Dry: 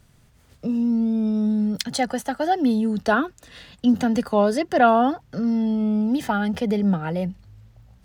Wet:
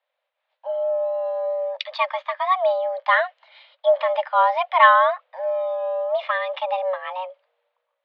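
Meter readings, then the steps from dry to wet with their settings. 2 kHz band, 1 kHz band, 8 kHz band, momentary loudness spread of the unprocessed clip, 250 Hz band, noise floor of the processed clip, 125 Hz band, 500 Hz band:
+6.5 dB, +4.5 dB, under -25 dB, 7 LU, under -40 dB, -80 dBFS, under -40 dB, +3.5 dB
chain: dynamic bell 2.5 kHz, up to +5 dB, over -46 dBFS, Q 1.9; mistuned SSB +370 Hz 210–3400 Hz; three bands expanded up and down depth 40%

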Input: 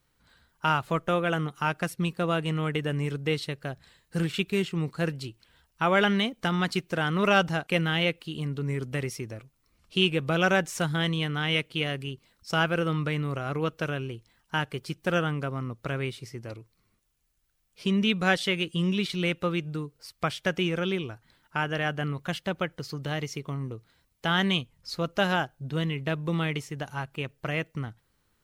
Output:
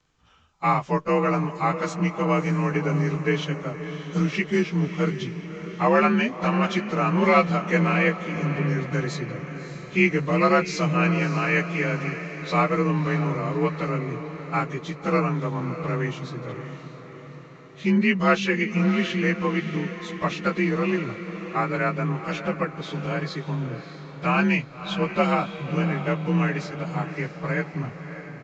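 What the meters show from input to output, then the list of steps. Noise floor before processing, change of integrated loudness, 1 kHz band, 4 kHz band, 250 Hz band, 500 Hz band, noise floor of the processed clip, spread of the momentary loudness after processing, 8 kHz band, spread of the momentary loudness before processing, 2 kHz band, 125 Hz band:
-72 dBFS, +4.0 dB, +5.5 dB, -5.5 dB, +5.5 dB, +4.5 dB, -42 dBFS, 12 LU, 0.0 dB, 12 LU, +3.0 dB, +4.5 dB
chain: frequency axis rescaled in octaves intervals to 90%; resampled via 16 kHz; echo that smears into a reverb 608 ms, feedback 55%, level -11 dB; trim +5.5 dB

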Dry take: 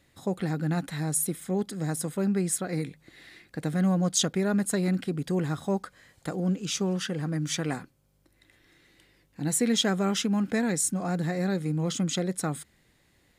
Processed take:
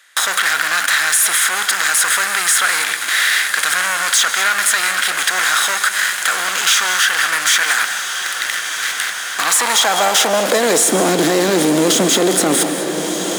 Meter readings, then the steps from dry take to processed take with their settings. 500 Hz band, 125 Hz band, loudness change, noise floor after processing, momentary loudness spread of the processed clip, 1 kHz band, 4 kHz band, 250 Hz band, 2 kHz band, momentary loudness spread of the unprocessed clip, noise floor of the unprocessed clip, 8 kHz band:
+12.5 dB, no reading, +14.0 dB, -24 dBFS, 6 LU, +19.5 dB, +19.0 dB, +5.0 dB, +25.5 dB, 9 LU, -66 dBFS, +17.5 dB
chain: spectral levelling over time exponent 0.6; gate with hold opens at -32 dBFS; high-pass 89 Hz 6 dB/octave; in parallel at -4.5 dB: fuzz box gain 38 dB, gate -43 dBFS; on the sum: high-pass sweep 1.5 kHz -> 340 Hz, 9.15–11.06 s; echo that smears into a reverb 1315 ms, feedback 58%, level -13 dB; gated-style reverb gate 230 ms rising, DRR 11.5 dB; loudness maximiser +8 dB; three bands compressed up and down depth 40%; trim -3.5 dB

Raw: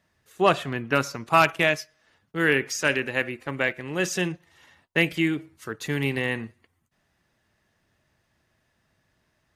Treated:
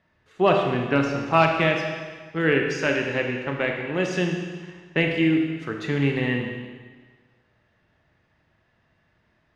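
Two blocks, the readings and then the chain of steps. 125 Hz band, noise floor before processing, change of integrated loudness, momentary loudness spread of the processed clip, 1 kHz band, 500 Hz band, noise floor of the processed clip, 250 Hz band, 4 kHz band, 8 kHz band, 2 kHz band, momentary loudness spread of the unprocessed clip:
+4.5 dB, -72 dBFS, +1.5 dB, 12 LU, +0.5 dB, +3.5 dB, -67 dBFS, +4.5 dB, -1.0 dB, -9.5 dB, -1.0 dB, 12 LU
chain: low-pass 3.2 kHz 12 dB/octave; dynamic bell 1.5 kHz, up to -6 dB, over -35 dBFS, Q 0.75; Schroeder reverb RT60 1.5 s, combs from 25 ms, DRR 2 dB; trim +2.5 dB

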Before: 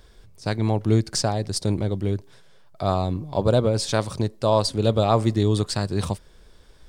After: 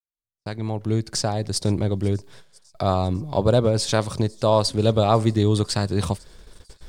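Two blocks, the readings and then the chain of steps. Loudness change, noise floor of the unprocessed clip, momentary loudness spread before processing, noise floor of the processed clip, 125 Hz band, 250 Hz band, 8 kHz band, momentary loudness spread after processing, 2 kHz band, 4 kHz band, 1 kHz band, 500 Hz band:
+1.0 dB, -51 dBFS, 8 LU, under -85 dBFS, +0.5 dB, +0.5 dB, +1.0 dB, 10 LU, +0.5 dB, +1.5 dB, +1.0 dB, +1.0 dB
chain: fade-in on the opening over 1.77 s; gate -48 dBFS, range -40 dB; in parallel at +2 dB: compression, threshold -36 dBFS, peak gain reduction 21 dB; on the sum: feedback echo behind a high-pass 499 ms, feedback 69%, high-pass 5.5 kHz, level -21 dB

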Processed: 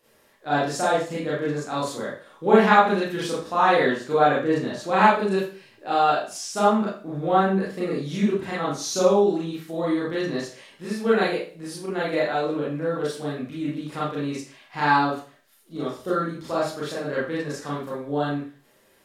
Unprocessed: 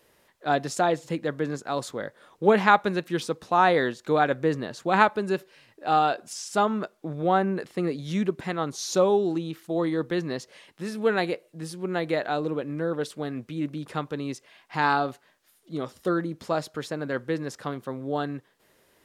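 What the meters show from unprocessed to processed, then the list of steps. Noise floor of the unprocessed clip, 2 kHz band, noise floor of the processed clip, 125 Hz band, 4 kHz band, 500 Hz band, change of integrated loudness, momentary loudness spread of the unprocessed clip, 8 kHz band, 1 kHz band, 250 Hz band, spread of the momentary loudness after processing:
-64 dBFS, +2.5 dB, -59 dBFS, +1.5 dB, +3.0 dB, +3.0 dB, +3.0 dB, 13 LU, +3.5 dB, +3.0 dB, +3.0 dB, 13 LU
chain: Schroeder reverb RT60 0.4 s, combs from 28 ms, DRR -8 dB; trim -5.5 dB

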